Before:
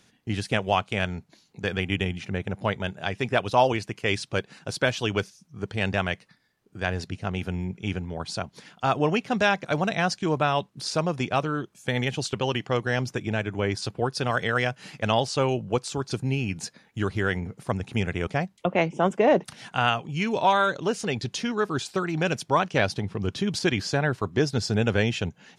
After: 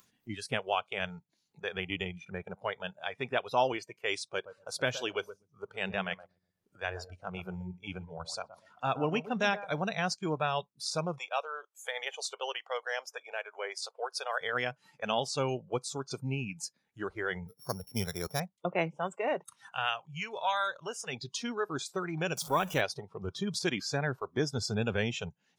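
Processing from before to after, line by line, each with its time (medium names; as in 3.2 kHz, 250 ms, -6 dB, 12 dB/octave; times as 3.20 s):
4.33–9.84 s: filtered feedback delay 122 ms, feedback 30%, low-pass 860 Hz, level -10 dB
11.18–14.41 s: high-pass 470 Hz 24 dB/octave
17.48–18.40 s: sorted samples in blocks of 8 samples
18.95–21.13 s: peaking EQ 310 Hz -7.5 dB 2.3 oct
22.37–22.81 s: jump at every zero crossing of -31 dBFS
whole clip: upward compressor, threshold -33 dBFS; spectral noise reduction 18 dB; treble shelf 5.2 kHz +6.5 dB; trim -7.5 dB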